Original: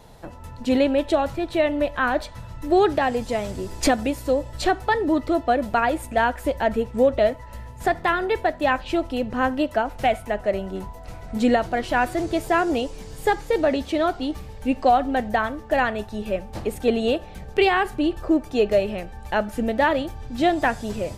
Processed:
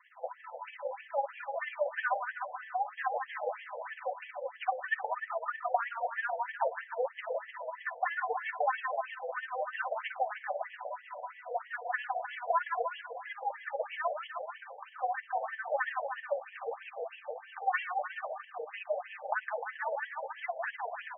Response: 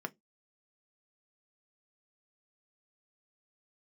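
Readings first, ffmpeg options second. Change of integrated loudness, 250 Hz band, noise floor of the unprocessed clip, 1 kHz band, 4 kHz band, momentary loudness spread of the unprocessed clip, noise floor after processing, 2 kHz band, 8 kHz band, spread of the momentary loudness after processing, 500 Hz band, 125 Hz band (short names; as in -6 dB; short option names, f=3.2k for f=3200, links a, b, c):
-13.5 dB, under -40 dB, -40 dBFS, -10.0 dB, -18.5 dB, 10 LU, -54 dBFS, -9.0 dB, under -40 dB, 9 LU, -15.0 dB, under -40 dB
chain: -filter_complex "[0:a]highshelf=f=4k:g=-9.5,bandreject=f=50:t=h:w=6,bandreject=f=100:t=h:w=6,bandreject=f=150:t=h:w=6,bandreject=f=200:t=h:w=6,bandreject=f=250:t=h:w=6,bandreject=f=300:t=h:w=6,bandreject=f=350:t=h:w=6,bandreject=f=400:t=h:w=6,bandreject=f=450:t=h:w=6,bandreject=f=500:t=h:w=6,aecho=1:1:4:0.4,adynamicequalizer=threshold=0.0282:dfrequency=410:dqfactor=1:tfrequency=410:tqfactor=1:attack=5:release=100:ratio=0.375:range=3:mode=cutabove:tftype=bell,acompressor=threshold=-29dB:ratio=6,tremolo=f=16:d=0.72,aecho=1:1:160|304|433.6|550.2|655.2:0.631|0.398|0.251|0.158|0.1,asplit=2[a][b];[1:a]atrim=start_sample=2205[c];[b][c]afir=irnorm=-1:irlink=0,volume=-2dB[d];[a][d]amix=inputs=2:normalize=0,afftfilt=real='re*between(b*sr/1024,610*pow(2400/610,0.5+0.5*sin(2*PI*3.1*pts/sr))/1.41,610*pow(2400/610,0.5+0.5*sin(2*PI*3.1*pts/sr))*1.41)':imag='im*between(b*sr/1024,610*pow(2400/610,0.5+0.5*sin(2*PI*3.1*pts/sr))/1.41,610*pow(2400/610,0.5+0.5*sin(2*PI*3.1*pts/sr))*1.41)':win_size=1024:overlap=0.75,volume=1.5dB"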